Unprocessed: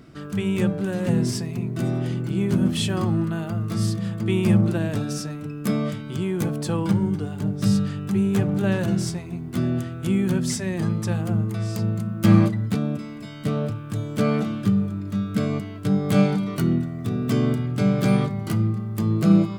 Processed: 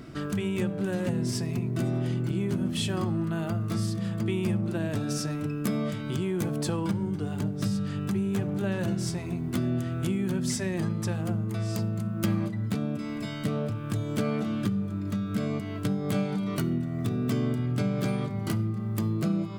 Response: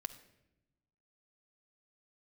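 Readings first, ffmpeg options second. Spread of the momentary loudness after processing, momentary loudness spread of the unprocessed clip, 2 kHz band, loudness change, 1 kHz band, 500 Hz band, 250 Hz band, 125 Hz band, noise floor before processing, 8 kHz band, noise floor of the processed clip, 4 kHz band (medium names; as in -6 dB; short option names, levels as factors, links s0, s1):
3 LU, 8 LU, -4.5 dB, -6.0 dB, -5.5 dB, -5.0 dB, -6.5 dB, -6.0 dB, -35 dBFS, -3.5 dB, -34 dBFS, -4.0 dB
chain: -filter_complex "[0:a]acompressor=threshold=0.0316:ratio=4,asplit=2[s0][s1];[1:a]atrim=start_sample=2205[s2];[s1][s2]afir=irnorm=-1:irlink=0,volume=0.708[s3];[s0][s3]amix=inputs=2:normalize=0"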